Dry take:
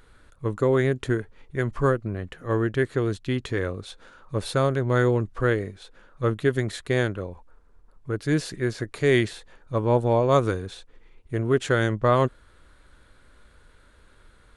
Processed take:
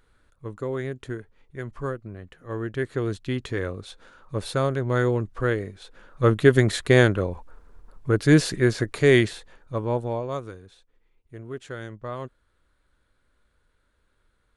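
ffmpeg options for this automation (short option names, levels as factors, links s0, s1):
-af "volume=2.24,afade=t=in:st=2.48:d=0.61:silence=0.446684,afade=t=in:st=5.7:d=0.86:silence=0.375837,afade=t=out:st=8.38:d=1.39:silence=0.316228,afade=t=out:st=9.77:d=0.67:silence=0.281838"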